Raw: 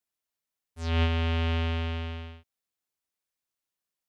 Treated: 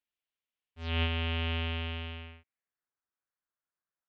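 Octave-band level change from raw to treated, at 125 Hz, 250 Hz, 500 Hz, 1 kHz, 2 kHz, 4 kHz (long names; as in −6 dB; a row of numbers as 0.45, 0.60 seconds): −6.0, −6.0, −6.0, −5.0, −1.0, +0.5 decibels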